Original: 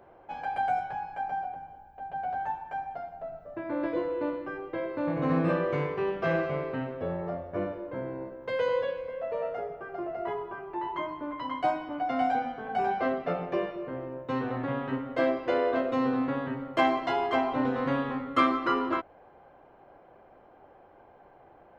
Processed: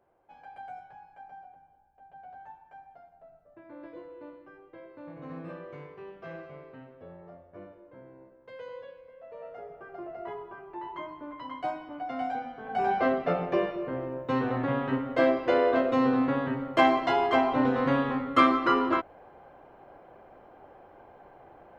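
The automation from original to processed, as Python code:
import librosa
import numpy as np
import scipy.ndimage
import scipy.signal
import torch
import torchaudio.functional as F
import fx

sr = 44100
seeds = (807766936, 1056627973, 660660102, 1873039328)

y = fx.gain(x, sr, db=fx.line((9.19, -15.0), (9.8, -5.5), (12.51, -5.5), (12.95, 3.0)))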